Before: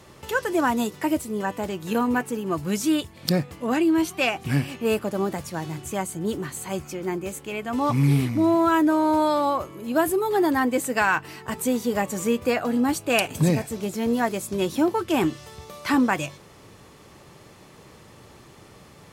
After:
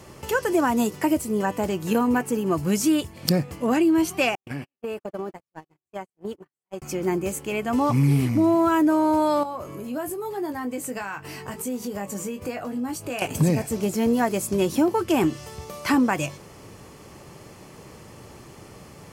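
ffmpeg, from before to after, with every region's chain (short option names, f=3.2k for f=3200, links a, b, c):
-filter_complex "[0:a]asettb=1/sr,asplit=3[a][b][c];[a]atrim=end=4.354[d];[b]atrim=start=4.35:end=6.82,asetpts=PTS-STARTPTS,afade=t=in:d=0.004:c=qsin,afade=t=out:st=2.466:d=0.004:c=qsin,agate=range=-59dB:threshold=-27dB:ratio=16:release=100:detection=peak,bass=f=250:g=-8,treble=f=4k:g=-9,acompressor=threshold=-31dB:ratio=10:attack=3.2:release=140:knee=1:detection=peak[e];[c]atrim=start=6.816[f];[d][e]acrossfade=d=0.004:c1=hsin:c2=qsin[g];[g][f]acrossfade=d=0.004:c1=qsin:c2=hsin,asettb=1/sr,asplit=3[h][i][j];[h]atrim=end=9.434[k];[i]atrim=start=9.43:end=13.22,asetpts=PTS-STARTPTS,afade=t=in:d=0.004:c=qsin,afade=t=out:st=3.786:d=0.004:c=qsin,acompressor=threshold=-36dB:ratio=3:attack=3.2:release=140:knee=1:detection=peak,asplit=2[l][m];[m]adelay=20,volume=-7dB[n];[l][n]amix=inputs=2:normalize=0,atrim=end_sample=167139[o];[j]atrim=start=13.216[p];[k][o]acrossfade=d=0.004:c1=hsin:c2=qsin[q];[q][p]acrossfade=d=0.004:c1=qsin:c2=hsin,equalizer=f=3.7k:t=o:w=0.26:g=-8.5,acompressor=threshold=-22dB:ratio=2.5,equalizer=f=1.6k:t=o:w=1.4:g=-3,volume=4.5dB"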